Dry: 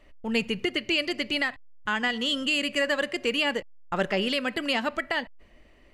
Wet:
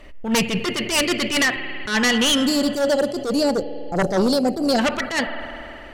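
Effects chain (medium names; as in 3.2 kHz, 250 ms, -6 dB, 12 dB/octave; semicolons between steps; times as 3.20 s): time-frequency box 2.46–4.79 s, 840–4000 Hz -26 dB; spring tank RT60 3 s, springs 50 ms, chirp 75 ms, DRR 14 dB; sine folder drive 10 dB, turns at -14 dBFS; attacks held to a fixed rise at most 120 dB/s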